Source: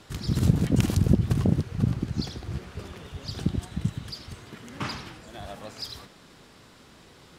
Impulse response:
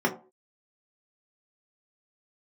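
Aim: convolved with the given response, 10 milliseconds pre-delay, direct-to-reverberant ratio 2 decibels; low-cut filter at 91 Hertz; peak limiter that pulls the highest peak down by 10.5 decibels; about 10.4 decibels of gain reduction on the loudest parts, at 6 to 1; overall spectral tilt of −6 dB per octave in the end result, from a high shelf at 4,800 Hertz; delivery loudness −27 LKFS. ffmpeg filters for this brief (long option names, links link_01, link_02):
-filter_complex "[0:a]highpass=91,highshelf=frequency=4800:gain=-6.5,acompressor=threshold=-26dB:ratio=6,alimiter=level_in=2.5dB:limit=-24dB:level=0:latency=1,volume=-2.5dB,asplit=2[link_01][link_02];[1:a]atrim=start_sample=2205,adelay=10[link_03];[link_02][link_03]afir=irnorm=-1:irlink=0,volume=-15dB[link_04];[link_01][link_04]amix=inputs=2:normalize=0,volume=9dB"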